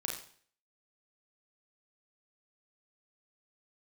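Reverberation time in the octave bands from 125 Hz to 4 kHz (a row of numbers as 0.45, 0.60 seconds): 0.55, 0.55, 0.50, 0.50, 0.50, 0.50 seconds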